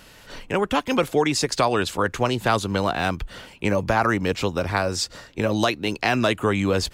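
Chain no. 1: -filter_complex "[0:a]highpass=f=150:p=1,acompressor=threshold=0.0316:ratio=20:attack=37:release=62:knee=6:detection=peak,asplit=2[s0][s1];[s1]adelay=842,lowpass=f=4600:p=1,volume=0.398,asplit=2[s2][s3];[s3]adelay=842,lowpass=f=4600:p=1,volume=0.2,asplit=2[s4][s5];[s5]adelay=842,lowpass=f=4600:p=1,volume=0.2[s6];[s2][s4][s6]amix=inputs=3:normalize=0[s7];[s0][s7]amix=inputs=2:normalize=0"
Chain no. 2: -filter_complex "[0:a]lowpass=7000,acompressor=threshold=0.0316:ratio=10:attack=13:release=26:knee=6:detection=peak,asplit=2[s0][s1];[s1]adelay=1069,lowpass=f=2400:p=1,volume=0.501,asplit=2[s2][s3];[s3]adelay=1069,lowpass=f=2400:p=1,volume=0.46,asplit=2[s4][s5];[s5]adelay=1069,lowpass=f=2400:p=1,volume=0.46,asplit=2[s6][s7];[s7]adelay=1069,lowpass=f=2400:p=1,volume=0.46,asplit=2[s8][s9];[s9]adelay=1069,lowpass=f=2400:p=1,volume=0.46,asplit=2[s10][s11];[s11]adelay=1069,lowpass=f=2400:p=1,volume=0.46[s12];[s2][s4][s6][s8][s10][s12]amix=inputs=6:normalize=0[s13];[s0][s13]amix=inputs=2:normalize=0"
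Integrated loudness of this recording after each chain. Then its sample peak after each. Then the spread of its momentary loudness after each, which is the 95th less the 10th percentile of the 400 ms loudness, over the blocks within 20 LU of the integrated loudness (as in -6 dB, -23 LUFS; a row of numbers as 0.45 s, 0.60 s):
-29.5 LUFS, -29.5 LUFS; -10.0 dBFS, -11.5 dBFS; 4 LU, 4 LU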